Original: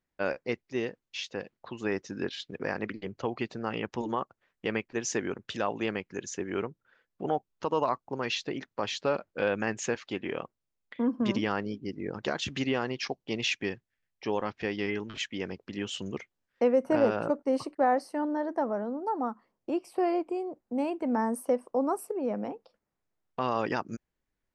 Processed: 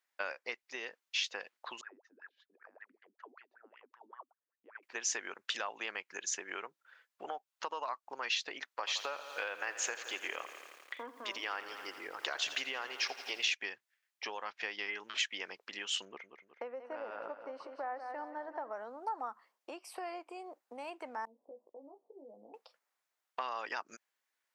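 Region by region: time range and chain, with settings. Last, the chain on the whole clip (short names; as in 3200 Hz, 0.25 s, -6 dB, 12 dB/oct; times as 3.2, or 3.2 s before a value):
1.81–4.83 compressor 3:1, threshold -32 dBFS + wah 5.2 Hz 240–1800 Hz, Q 16
8.75–13.54 bell 210 Hz -15 dB 0.25 oct + lo-fi delay 84 ms, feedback 80%, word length 9-bit, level -15 dB
16.05–18.71 tape spacing loss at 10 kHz 32 dB + feedback echo 0.184 s, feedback 45%, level -11 dB
21.25–22.54 compressor 5:1, threshold -37 dBFS + Gaussian blur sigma 17 samples + doubler 18 ms -4.5 dB
whole clip: compressor, threshold -34 dBFS; HPF 970 Hz 12 dB/oct; gain +5 dB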